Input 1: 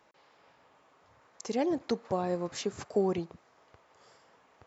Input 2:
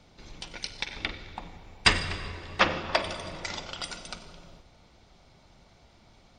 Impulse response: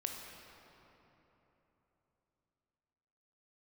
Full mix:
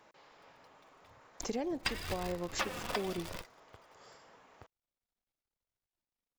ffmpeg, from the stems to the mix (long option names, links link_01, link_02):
-filter_complex "[0:a]volume=2.5dB,asplit=2[link_01][link_02];[1:a]flanger=delay=1.9:depth=2.3:regen=24:speed=0.88:shape=sinusoidal,acrusher=bits=7:dc=4:mix=0:aa=0.000001,volume=3dB[link_03];[link_02]apad=whole_len=281788[link_04];[link_03][link_04]sidechaingate=range=-37dB:threshold=-51dB:ratio=16:detection=peak[link_05];[link_01][link_05]amix=inputs=2:normalize=0,acompressor=threshold=-33dB:ratio=6"